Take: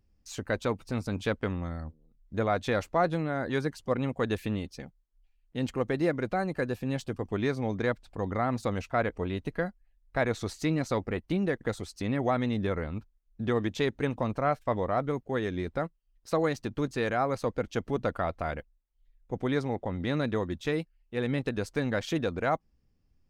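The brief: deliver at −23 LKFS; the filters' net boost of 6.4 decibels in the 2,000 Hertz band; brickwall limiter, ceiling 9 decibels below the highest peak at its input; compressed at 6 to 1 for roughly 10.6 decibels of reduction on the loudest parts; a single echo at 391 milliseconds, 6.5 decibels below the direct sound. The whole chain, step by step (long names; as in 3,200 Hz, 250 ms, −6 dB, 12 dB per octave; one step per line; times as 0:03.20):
parametric band 2,000 Hz +8 dB
downward compressor 6 to 1, threshold −32 dBFS
brickwall limiter −27.5 dBFS
single-tap delay 391 ms −6.5 dB
level +16 dB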